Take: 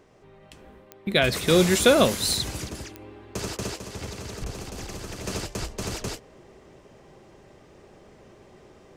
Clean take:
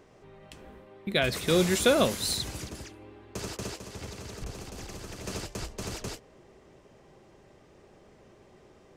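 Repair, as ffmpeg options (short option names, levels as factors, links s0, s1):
-af "adeclick=t=4,asetnsamples=n=441:p=0,asendcmd='1.06 volume volume -5dB',volume=1"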